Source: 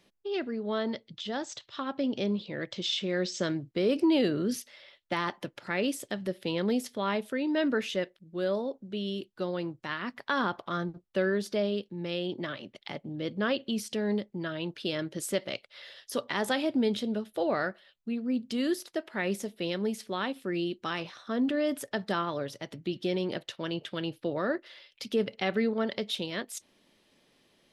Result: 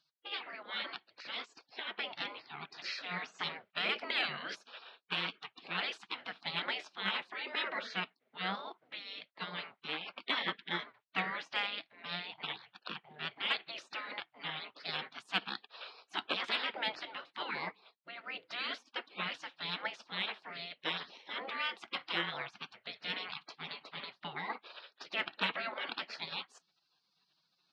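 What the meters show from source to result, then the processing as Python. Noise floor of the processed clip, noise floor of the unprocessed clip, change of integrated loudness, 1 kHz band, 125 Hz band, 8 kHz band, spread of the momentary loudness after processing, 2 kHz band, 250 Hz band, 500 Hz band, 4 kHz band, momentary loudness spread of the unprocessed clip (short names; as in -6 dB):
-80 dBFS, -69 dBFS, -6.5 dB, -4.0 dB, -14.5 dB, under -15 dB, 10 LU, -0.5 dB, -20.5 dB, -17.5 dB, 0.0 dB, 8 LU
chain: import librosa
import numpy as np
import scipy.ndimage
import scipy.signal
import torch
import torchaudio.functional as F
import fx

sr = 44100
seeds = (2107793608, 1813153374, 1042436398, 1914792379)

y = fx.cabinet(x, sr, low_hz=280.0, low_slope=24, high_hz=3400.0, hz=(340.0, 1400.0, 2100.0), db=(-10, 6, 9))
y = fx.spec_gate(y, sr, threshold_db=-20, keep='weak')
y = fx.cheby_harmonics(y, sr, harmonics=(5,), levels_db=(-34,), full_scale_db=-24.0)
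y = y * 10.0 ** (8.5 / 20.0)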